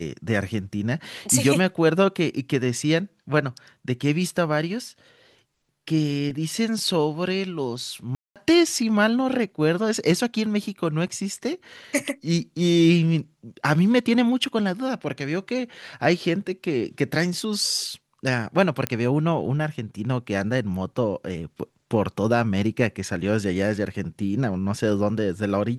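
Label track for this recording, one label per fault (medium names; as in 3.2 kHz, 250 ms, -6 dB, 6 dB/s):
8.150000	8.360000	dropout 207 ms
18.870000	18.870000	pop -8 dBFS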